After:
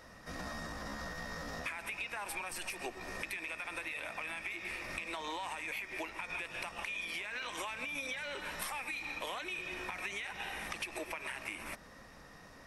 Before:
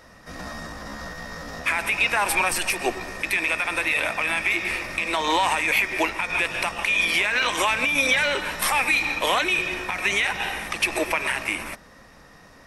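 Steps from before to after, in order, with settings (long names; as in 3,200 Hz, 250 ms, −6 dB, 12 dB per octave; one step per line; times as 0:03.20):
downward compressor 10 to 1, threshold −32 dBFS, peak gain reduction 16 dB
level −5.5 dB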